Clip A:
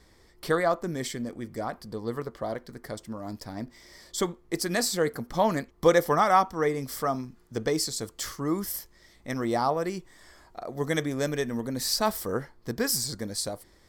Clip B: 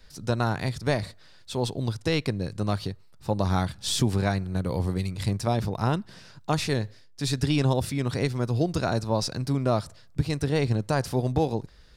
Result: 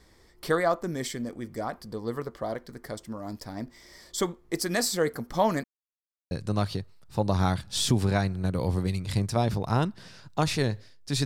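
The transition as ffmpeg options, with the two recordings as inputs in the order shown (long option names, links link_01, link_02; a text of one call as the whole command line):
ffmpeg -i cue0.wav -i cue1.wav -filter_complex "[0:a]apad=whole_dur=11.25,atrim=end=11.25,asplit=2[link_01][link_02];[link_01]atrim=end=5.64,asetpts=PTS-STARTPTS,afade=type=out:start_time=5.636:duration=0.004:curve=hsin[link_03];[link_02]atrim=start=5.64:end=6.31,asetpts=PTS-STARTPTS,volume=0[link_04];[1:a]atrim=start=2.42:end=7.36,asetpts=PTS-STARTPTS,afade=type=in:duration=0.004:curve=hsin[link_05];[link_03][link_04][link_05]concat=n=3:v=0:a=1" out.wav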